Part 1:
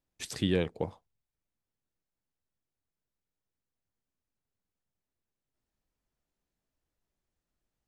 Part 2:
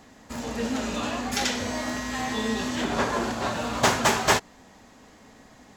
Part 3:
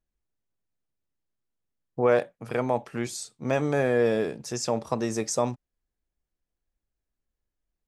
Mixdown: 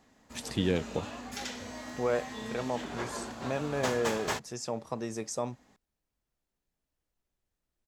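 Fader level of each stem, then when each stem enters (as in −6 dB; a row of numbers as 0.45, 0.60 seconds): −0.5, −12.5, −8.0 decibels; 0.15, 0.00, 0.00 seconds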